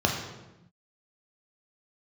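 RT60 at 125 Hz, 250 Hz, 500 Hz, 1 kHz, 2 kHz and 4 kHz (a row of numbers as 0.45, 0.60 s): 1.5, 1.4, 1.0, 0.90, 0.85, 0.75 s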